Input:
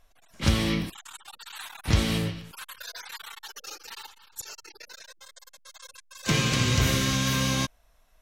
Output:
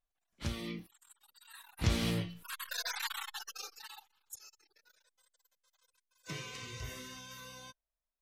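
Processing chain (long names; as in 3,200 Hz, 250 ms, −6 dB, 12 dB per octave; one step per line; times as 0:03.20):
source passing by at 0:02.95, 12 m/s, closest 4 metres
noise reduction from a noise print of the clip's start 12 dB
level +3 dB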